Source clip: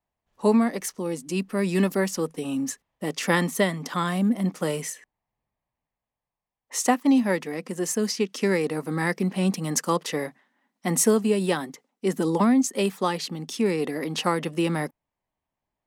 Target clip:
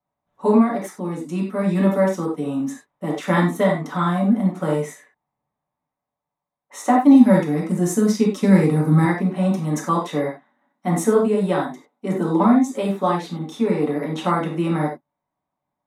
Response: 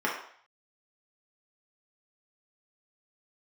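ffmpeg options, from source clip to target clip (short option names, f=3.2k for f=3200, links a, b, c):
-filter_complex "[0:a]asettb=1/sr,asplit=3[a][b][c];[a]atrim=end=6.984[d];[b]atrim=start=6.98:end=9.05,asetpts=PTS-STARTPTS,afade=t=in:d=0.004:c=qsin,afade=t=out:st=2.066:d=0.004:c=qsin,bass=f=250:g=12,treble=f=4k:g=9[e];[c]atrim=start=9.046[f];[d][e]acrossfade=d=0.004:c1=hsin:c2=qsin[g];[g][f]acrossfade=d=0.004:c1=qsin:c2=hsin[h];[1:a]atrim=start_sample=2205,atrim=end_sample=3087,asetrate=29547,aresample=44100[i];[h][i]afir=irnorm=-1:irlink=0,volume=-9dB"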